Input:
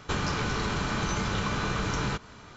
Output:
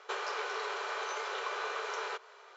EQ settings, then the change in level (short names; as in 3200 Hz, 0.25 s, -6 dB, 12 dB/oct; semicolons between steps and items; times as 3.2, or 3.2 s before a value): brick-wall FIR high-pass 370 Hz; high shelf 5300 Hz -11 dB; -3.5 dB